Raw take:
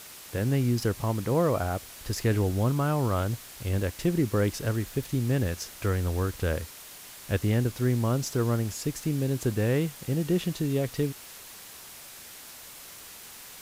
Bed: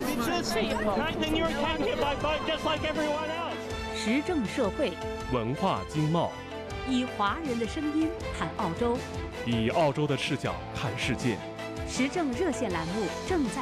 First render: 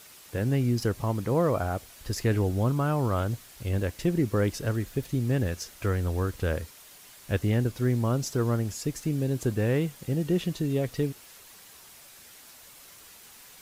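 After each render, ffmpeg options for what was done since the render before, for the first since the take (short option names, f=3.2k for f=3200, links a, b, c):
-af "afftdn=nr=6:nf=-46"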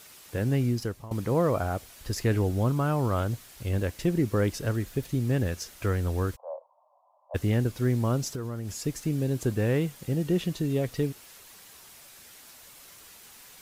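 -filter_complex "[0:a]asplit=3[a][b][c];[a]afade=t=out:st=6.35:d=0.02[d];[b]asuperpass=centerf=770:order=12:qfactor=1.5,afade=t=in:st=6.35:d=0.02,afade=t=out:st=7.34:d=0.02[e];[c]afade=t=in:st=7.34:d=0.02[f];[d][e][f]amix=inputs=3:normalize=0,asettb=1/sr,asplit=3[g][h][i];[g]atrim=end=8.324[j];[h]atrim=start=8.32:end=8.76,asetpts=PTS-STARTPTS,afade=t=in:d=0.004:c=qsin,afade=t=out:st=0.436:d=0.004:c=qsin,acompressor=threshold=-29dB:ratio=10:attack=3.2:release=140:knee=1:detection=peak[k];[i]atrim=start=8.756[l];[j][k]acrossfade=d=0.004:c1=hsin:c2=qsin[m];[m][l]acrossfade=d=0.004:c1=qsin:c2=hsin,asplit=2[n][o];[n]atrim=end=1.11,asetpts=PTS-STARTPTS,afade=t=out:st=0.64:d=0.47:silence=0.11885[p];[o]atrim=start=1.11,asetpts=PTS-STARTPTS,afade=t=in:d=0.004:c=hsin:silence=0.11885[q];[p][q]concat=n=2:v=0:a=1"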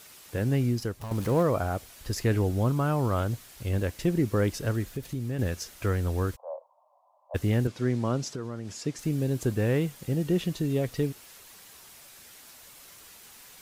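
-filter_complex "[0:a]asettb=1/sr,asplit=3[a][b][c];[a]atrim=end=1.014[d];[b]atrim=start=1.01:end=1.43,asetpts=PTS-STARTPTS,afade=t=in:d=0.004:c=qsin,afade=t=out:st=0.416:d=0.004:c=qsin,aeval=exprs='val(0)+0.5*0.015*sgn(val(0))':c=same[e];[c]atrim=start=1.426[f];[d][e]acrossfade=d=0.004:c1=hsin:c2=qsin[g];[g][f]acrossfade=d=0.004:c1=qsin:c2=hsin,asettb=1/sr,asplit=3[h][i][j];[h]atrim=end=4.924[k];[i]atrim=start=4.92:end=5.39,asetpts=PTS-STARTPTS,afade=t=in:d=0.004:c=qsin,afade=t=out:st=0.466:d=0.004:c=qsin,acompressor=threshold=-32dB:ratio=2:attack=3.2:release=140:knee=1:detection=peak[l];[j]atrim=start=5.386[m];[k][l]acrossfade=d=0.004:c1=hsin:c2=qsin[n];[n][m]acrossfade=d=0.004:c1=qsin:c2=hsin,asettb=1/sr,asplit=3[o][p][q];[o]atrim=end=7.674[r];[p]atrim=start=7.67:end=8.99,asetpts=PTS-STARTPTS,afade=t=in:d=0.004:c=qsin,afade=t=out:st=1.316:d=0.004:c=qsin,highpass=130,lowpass=6.7k[s];[q]atrim=start=8.986[t];[r][s]acrossfade=d=0.004:c1=hsin:c2=qsin[u];[u][t]acrossfade=d=0.004:c1=qsin:c2=hsin"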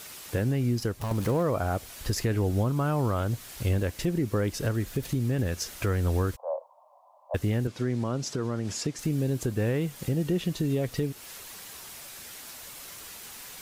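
-filter_complex "[0:a]asplit=2[a][b];[b]acompressor=threshold=-32dB:ratio=6,volume=1.5dB[c];[a][c]amix=inputs=2:normalize=0,alimiter=limit=-18dB:level=0:latency=1:release=310"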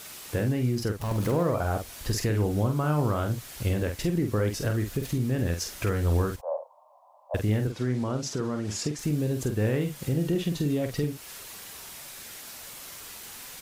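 -filter_complex "[0:a]asplit=2[a][b];[b]adelay=47,volume=-6.5dB[c];[a][c]amix=inputs=2:normalize=0"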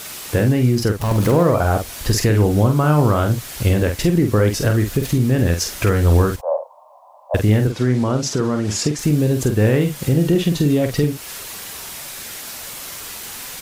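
-af "volume=10.5dB"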